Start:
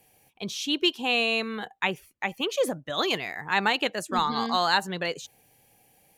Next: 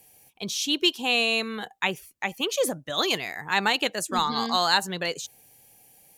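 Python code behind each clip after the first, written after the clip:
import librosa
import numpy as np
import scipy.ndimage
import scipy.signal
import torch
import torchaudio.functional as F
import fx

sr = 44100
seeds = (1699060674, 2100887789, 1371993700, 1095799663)

y = fx.bass_treble(x, sr, bass_db=0, treble_db=8)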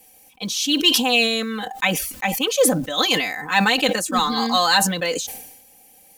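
y = x + 0.97 * np.pad(x, (int(3.9 * sr / 1000.0), 0))[:len(x)]
y = fx.quant_float(y, sr, bits=4)
y = fx.sustainer(y, sr, db_per_s=57.0)
y = F.gain(torch.from_numpy(y), 2.0).numpy()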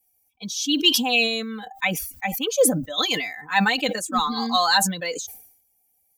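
y = fx.bin_expand(x, sr, power=1.5)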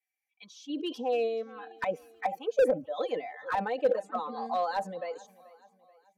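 y = fx.auto_wah(x, sr, base_hz=520.0, top_hz=2000.0, q=4.9, full_db=-20.5, direction='down')
y = fx.echo_feedback(y, sr, ms=433, feedback_pct=49, wet_db=-22.0)
y = fx.slew_limit(y, sr, full_power_hz=38.0)
y = F.gain(torch.from_numpy(y), 4.5).numpy()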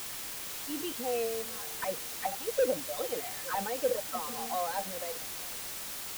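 y = fx.quant_dither(x, sr, seeds[0], bits=6, dither='triangular')
y = F.gain(torch.from_numpy(y), -4.0).numpy()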